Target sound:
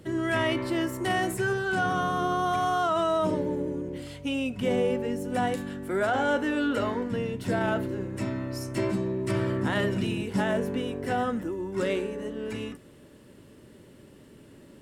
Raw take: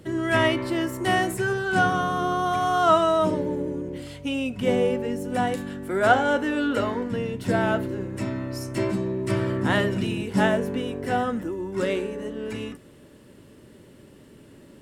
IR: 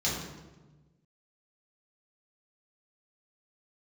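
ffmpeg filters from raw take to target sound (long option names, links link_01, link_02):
-af "alimiter=limit=-15.5dB:level=0:latency=1:release=19,volume=-2dB"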